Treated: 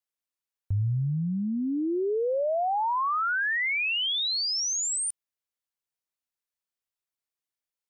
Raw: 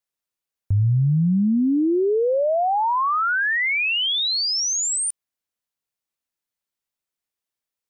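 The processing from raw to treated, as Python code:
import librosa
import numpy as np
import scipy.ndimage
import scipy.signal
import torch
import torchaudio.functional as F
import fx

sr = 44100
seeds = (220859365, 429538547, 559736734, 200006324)

y = fx.peak_eq(x, sr, hz=200.0, db=-4.5, octaves=1.7)
y = y * librosa.db_to_amplitude(-5.5)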